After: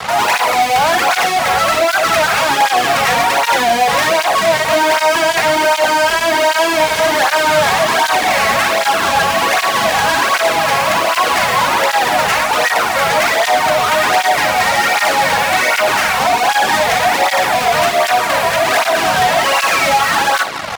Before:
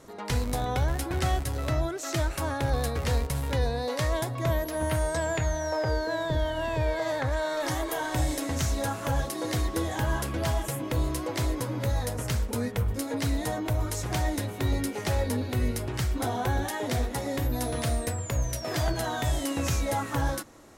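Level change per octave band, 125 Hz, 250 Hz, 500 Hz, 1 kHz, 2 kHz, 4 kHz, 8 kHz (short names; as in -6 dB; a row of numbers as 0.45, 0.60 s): -4.0, +5.5, +15.5, +22.5, +23.0, +21.0, +15.5 dB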